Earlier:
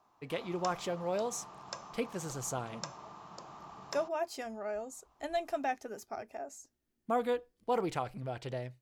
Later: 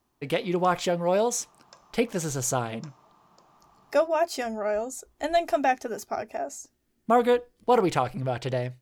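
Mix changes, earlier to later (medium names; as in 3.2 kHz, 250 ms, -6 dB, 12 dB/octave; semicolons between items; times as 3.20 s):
speech +10.5 dB; background -9.5 dB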